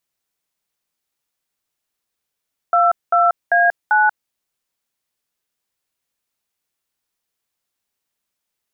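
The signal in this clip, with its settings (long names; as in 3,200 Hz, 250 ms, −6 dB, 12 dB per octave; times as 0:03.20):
touch tones "22A9", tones 186 ms, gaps 207 ms, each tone −13.5 dBFS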